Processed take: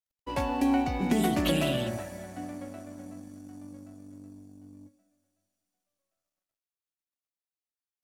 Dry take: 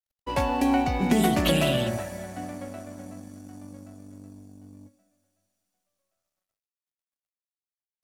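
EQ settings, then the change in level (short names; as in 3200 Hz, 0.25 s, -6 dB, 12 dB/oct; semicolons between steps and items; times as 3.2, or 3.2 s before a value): bell 300 Hz +5.5 dB 0.31 oct; -5.0 dB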